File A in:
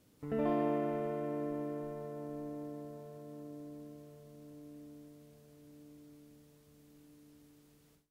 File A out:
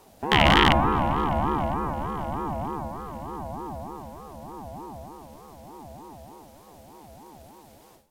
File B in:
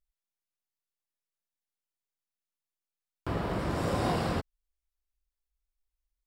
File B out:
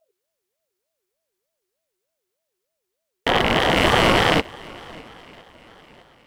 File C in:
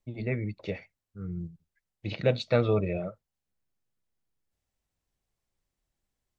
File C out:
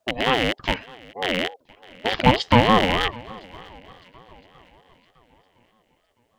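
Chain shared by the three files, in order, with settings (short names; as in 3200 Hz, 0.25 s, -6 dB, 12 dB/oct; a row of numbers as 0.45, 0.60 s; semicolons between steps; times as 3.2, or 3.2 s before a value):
rattling part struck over -36 dBFS, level -19 dBFS; swung echo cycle 1.012 s, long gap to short 1.5:1, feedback 32%, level -23 dB; ring modulator with a swept carrier 510 Hz, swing 30%, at 3.3 Hz; normalise peaks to -1.5 dBFS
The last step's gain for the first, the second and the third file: +16.0, +14.5, +11.0 dB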